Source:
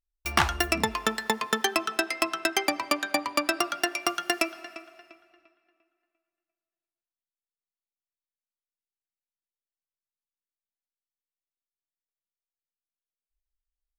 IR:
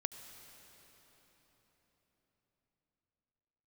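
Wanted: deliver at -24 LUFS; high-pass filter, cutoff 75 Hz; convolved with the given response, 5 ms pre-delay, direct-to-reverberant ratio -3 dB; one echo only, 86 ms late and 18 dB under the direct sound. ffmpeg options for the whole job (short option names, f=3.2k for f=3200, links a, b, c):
-filter_complex "[0:a]highpass=75,aecho=1:1:86:0.126,asplit=2[a][b];[1:a]atrim=start_sample=2205,adelay=5[c];[b][c]afir=irnorm=-1:irlink=0,volume=3.5dB[d];[a][d]amix=inputs=2:normalize=0,volume=-1.5dB"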